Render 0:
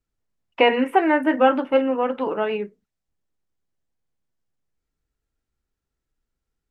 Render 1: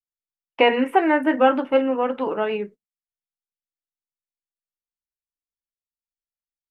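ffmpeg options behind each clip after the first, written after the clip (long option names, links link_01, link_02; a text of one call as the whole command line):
ffmpeg -i in.wav -af "agate=range=-29dB:threshold=-39dB:ratio=16:detection=peak" out.wav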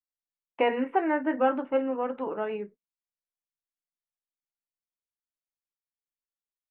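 ffmpeg -i in.wav -af "lowpass=2100,volume=-7.5dB" out.wav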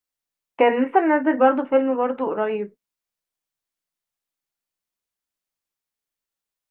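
ffmpeg -i in.wav -filter_complex "[0:a]acrossover=split=2900[link_01][link_02];[link_02]acompressor=threshold=-55dB:ratio=4:attack=1:release=60[link_03];[link_01][link_03]amix=inputs=2:normalize=0,volume=8dB" out.wav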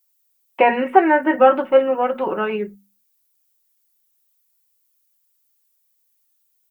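ffmpeg -i in.wav -af "aemphasis=mode=production:type=75fm,bandreject=frequency=50:width_type=h:width=6,bandreject=frequency=100:width_type=h:width=6,bandreject=frequency=150:width_type=h:width=6,bandreject=frequency=200:width_type=h:width=6,bandreject=frequency=250:width_type=h:width=6,aecho=1:1:5.4:0.65,volume=2dB" out.wav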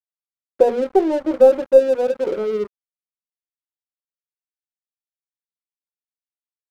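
ffmpeg -i in.wav -af "aeval=exprs='0.891*(cos(1*acos(clip(val(0)/0.891,-1,1)))-cos(1*PI/2))+0.0251*(cos(4*acos(clip(val(0)/0.891,-1,1)))-cos(4*PI/2))':channel_layout=same,lowpass=frequency=480:width_type=q:width=3.5,aeval=exprs='sgn(val(0))*max(abs(val(0))-0.0398,0)':channel_layout=same,volume=-5dB" out.wav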